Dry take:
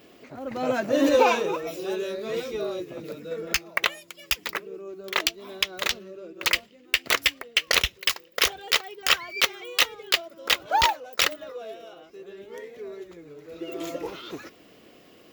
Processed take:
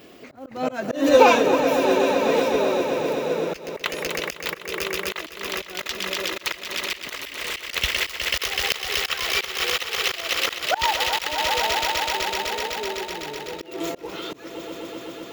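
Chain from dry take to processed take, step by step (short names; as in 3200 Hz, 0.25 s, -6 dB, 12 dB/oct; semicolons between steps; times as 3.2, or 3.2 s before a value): swelling echo 0.126 s, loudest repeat 5, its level -13 dB; auto swell 0.238 s; 7.04–7.72 hard clip -30.5 dBFS, distortion -29 dB; gain +5.5 dB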